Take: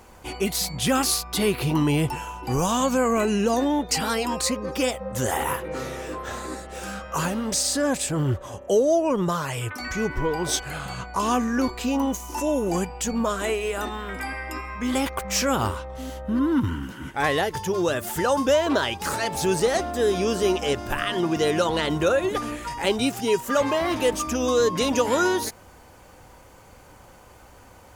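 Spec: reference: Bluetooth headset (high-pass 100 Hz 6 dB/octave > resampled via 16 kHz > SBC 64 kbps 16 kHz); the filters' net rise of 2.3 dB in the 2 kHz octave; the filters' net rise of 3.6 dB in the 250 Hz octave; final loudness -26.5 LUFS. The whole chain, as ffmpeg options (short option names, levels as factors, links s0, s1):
-af "highpass=f=100:p=1,equalizer=f=250:t=o:g=5,equalizer=f=2000:t=o:g=3,aresample=16000,aresample=44100,volume=0.668" -ar 16000 -c:a sbc -b:a 64k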